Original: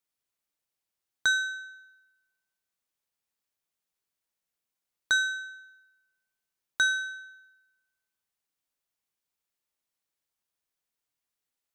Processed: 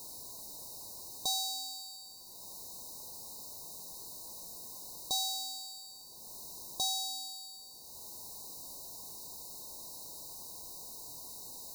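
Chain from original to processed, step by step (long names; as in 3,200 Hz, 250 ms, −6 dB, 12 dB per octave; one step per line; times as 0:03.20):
power curve on the samples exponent 0.35
linear-phase brick-wall band-stop 1,100–3,700 Hz
level −5.5 dB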